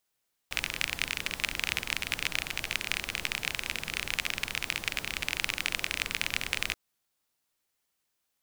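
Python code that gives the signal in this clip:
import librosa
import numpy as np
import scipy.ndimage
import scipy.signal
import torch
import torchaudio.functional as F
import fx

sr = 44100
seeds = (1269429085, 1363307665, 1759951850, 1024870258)

y = fx.rain(sr, seeds[0], length_s=6.23, drops_per_s=29.0, hz=2400.0, bed_db=-8.5)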